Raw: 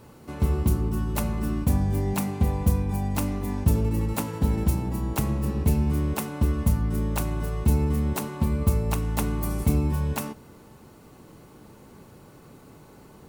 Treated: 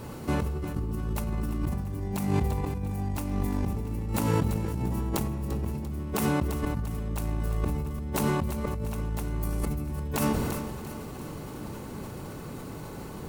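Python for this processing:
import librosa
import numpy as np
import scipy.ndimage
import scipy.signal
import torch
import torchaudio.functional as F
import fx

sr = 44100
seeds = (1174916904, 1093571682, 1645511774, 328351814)

y = fx.low_shelf(x, sr, hz=170.0, db=2.5)
y = fx.over_compress(y, sr, threshold_db=-32.0, ratio=-1.0)
y = fx.echo_feedback(y, sr, ms=344, feedback_pct=59, wet_db=-12.5)
y = fx.sustainer(y, sr, db_per_s=26.0)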